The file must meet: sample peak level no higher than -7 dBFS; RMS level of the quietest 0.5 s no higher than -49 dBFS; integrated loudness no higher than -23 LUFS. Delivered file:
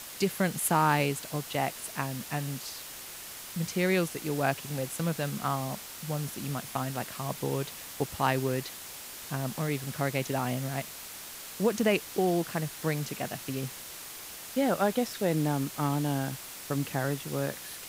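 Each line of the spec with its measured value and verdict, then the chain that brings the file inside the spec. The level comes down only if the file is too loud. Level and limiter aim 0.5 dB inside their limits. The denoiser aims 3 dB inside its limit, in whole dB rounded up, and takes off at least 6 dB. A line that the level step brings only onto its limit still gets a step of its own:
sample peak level -10.5 dBFS: pass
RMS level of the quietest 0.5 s -43 dBFS: fail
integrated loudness -31.5 LUFS: pass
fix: noise reduction 9 dB, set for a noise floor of -43 dBFS

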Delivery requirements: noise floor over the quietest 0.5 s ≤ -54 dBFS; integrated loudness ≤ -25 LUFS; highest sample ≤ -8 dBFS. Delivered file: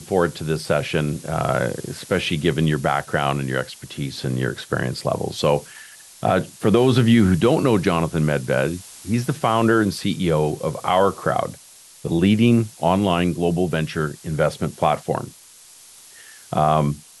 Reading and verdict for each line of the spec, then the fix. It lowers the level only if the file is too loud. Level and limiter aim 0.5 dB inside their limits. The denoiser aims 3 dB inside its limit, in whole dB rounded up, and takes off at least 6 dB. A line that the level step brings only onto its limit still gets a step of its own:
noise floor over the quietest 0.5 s -47 dBFS: fail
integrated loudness -21.0 LUFS: fail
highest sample -5.5 dBFS: fail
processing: noise reduction 6 dB, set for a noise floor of -47 dBFS; trim -4.5 dB

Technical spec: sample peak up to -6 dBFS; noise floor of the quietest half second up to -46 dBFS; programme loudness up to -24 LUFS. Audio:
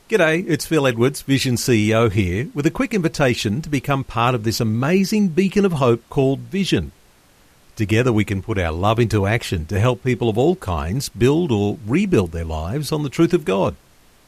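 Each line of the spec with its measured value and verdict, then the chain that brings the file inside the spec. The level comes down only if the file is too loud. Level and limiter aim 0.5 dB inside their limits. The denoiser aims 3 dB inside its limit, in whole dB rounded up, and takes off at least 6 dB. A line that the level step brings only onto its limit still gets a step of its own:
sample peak -4.5 dBFS: fail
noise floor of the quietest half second -53 dBFS: pass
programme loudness -19.0 LUFS: fail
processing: trim -5.5 dB

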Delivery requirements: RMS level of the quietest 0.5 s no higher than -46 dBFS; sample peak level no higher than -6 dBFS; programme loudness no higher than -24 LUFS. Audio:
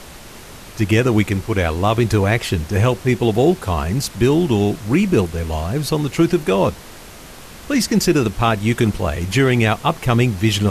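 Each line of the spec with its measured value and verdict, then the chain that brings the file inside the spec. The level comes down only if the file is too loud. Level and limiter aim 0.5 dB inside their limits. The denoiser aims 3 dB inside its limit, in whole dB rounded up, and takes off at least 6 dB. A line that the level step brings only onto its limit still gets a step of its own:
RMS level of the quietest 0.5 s -38 dBFS: fail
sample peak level -4.5 dBFS: fail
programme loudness -18.0 LUFS: fail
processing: noise reduction 6 dB, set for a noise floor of -38 dBFS; trim -6.5 dB

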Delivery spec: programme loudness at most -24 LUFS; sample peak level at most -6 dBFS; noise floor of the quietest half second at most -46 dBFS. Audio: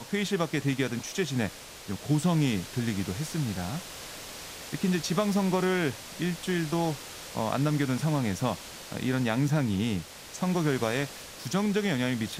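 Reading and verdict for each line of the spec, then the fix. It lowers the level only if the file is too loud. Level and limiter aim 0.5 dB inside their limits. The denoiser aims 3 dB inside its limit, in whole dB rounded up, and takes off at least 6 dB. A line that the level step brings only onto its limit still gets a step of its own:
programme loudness -29.0 LUFS: pass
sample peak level -12.5 dBFS: pass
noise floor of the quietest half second -42 dBFS: fail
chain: noise reduction 7 dB, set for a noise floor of -42 dBFS

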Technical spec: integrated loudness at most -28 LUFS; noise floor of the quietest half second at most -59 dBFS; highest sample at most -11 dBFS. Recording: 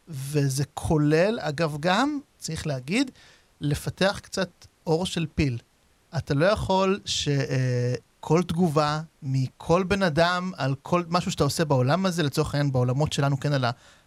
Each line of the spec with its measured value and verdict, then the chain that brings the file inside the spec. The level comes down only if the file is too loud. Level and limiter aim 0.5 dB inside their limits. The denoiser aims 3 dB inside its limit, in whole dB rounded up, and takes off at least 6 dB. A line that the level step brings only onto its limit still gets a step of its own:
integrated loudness -25.0 LUFS: fail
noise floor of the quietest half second -62 dBFS: pass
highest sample -7.5 dBFS: fail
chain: trim -3.5 dB; peak limiter -11.5 dBFS

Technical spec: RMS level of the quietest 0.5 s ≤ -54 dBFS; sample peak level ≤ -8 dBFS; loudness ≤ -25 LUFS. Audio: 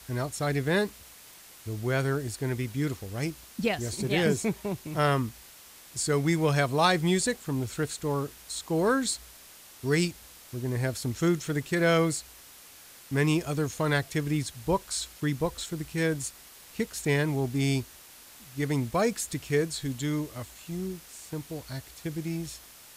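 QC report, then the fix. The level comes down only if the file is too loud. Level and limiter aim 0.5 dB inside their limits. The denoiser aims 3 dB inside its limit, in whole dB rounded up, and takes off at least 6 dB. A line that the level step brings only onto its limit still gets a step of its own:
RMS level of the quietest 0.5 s -51 dBFS: fail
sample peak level -10.0 dBFS: pass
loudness -29.0 LUFS: pass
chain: noise reduction 6 dB, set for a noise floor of -51 dBFS

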